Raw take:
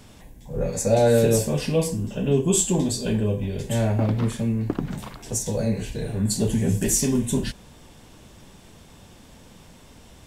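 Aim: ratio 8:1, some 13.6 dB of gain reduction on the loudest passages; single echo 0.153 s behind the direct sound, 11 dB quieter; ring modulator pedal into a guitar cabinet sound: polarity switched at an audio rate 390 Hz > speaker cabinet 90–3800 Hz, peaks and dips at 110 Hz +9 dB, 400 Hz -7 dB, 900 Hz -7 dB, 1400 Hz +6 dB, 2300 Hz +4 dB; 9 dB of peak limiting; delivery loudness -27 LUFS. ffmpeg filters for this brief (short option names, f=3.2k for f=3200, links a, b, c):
-af "acompressor=threshold=-28dB:ratio=8,alimiter=level_in=2dB:limit=-24dB:level=0:latency=1,volume=-2dB,aecho=1:1:153:0.282,aeval=exprs='val(0)*sgn(sin(2*PI*390*n/s))':c=same,highpass=90,equalizer=f=110:t=q:w=4:g=9,equalizer=f=400:t=q:w=4:g=-7,equalizer=f=900:t=q:w=4:g=-7,equalizer=f=1.4k:t=q:w=4:g=6,equalizer=f=2.3k:t=q:w=4:g=4,lowpass=f=3.8k:w=0.5412,lowpass=f=3.8k:w=1.3066,volume=8dB"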